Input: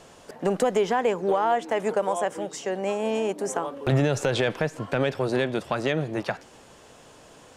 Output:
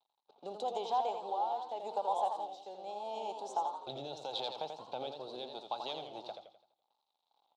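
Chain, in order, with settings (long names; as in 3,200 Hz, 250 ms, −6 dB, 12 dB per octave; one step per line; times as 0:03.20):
low-pass that shuts in the quiet parts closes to 1,900 Hz, open at −23 dBFS
rotating-speaker cabinet horn 0.8 Hz
dead-zone distortion −48.5 dBFS
pair of resonant band-passes 1,800 Hz, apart 2.2 octaves
feedback echo with a swinging delay time 84 ms, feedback 42%, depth 118 cents, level −6.5 dB
level +2 dB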